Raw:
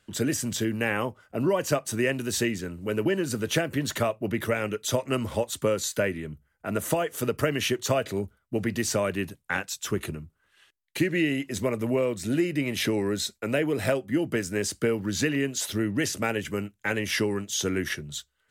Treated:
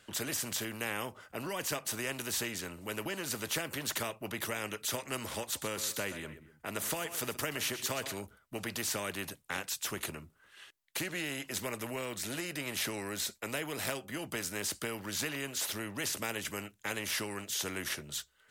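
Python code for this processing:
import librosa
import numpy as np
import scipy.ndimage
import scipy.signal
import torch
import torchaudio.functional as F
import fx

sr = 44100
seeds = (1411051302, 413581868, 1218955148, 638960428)

y = fx.echo_feedback(x, sr, ms=125, feedback_pct=26, wet_db=-19, at=(5.55, 8.15), fade=0.02)
y = fx.low_shelf(y, sr, hz=120.0, db=-9.0)
y = fx.spectral_comp(y, sr, ratio=2.0)
y = y * librosa.db_to_amplitude(-7.5)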